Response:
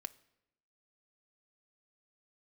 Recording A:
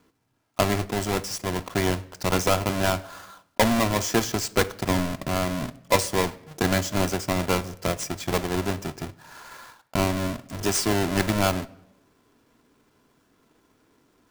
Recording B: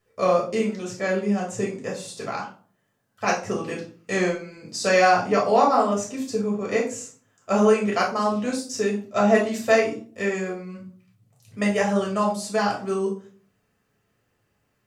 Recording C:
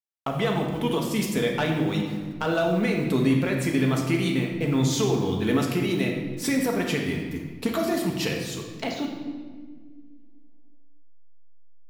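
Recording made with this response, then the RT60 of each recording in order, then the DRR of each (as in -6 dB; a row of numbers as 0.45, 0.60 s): A; 0.85, 0.45, 1.7 s; 9.5, -3.5, -0.5 dB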